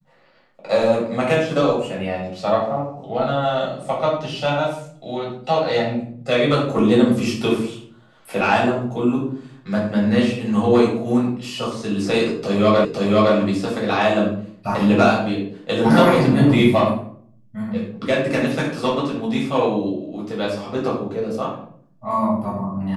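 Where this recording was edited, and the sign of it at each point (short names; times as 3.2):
12.85 repeat of the last 0.51 s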